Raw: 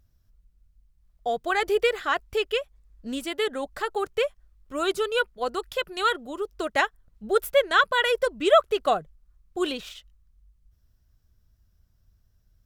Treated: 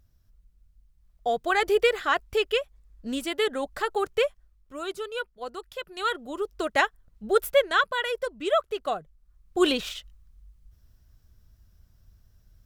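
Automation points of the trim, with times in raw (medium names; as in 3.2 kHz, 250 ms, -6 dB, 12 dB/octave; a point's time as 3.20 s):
4.25 s +1 dB
4.81 s -8 dB
5.80 s -8 dB
6.35 s +0.5 dB
7.52 s +0.5 dB
8.04 s -6 dB
8.99 s -6 dB
9.68 s +6 dB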